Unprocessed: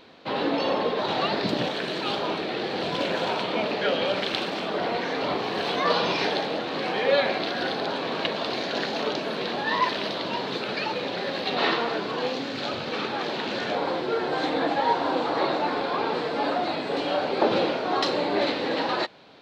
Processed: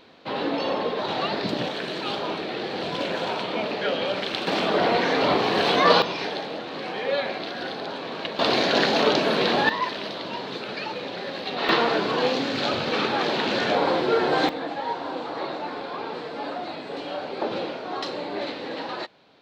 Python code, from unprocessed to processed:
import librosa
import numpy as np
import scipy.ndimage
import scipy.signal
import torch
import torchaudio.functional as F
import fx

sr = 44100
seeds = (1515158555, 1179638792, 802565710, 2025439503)

y = fx.gain(x, sr, db=fx.steps((0.0, -1.0), (4.47, 6.0), (6.02, -4.0), (8.39, 7.5), (9.69, -3.0), (11.69, 5.0), (14.49, -6.0)))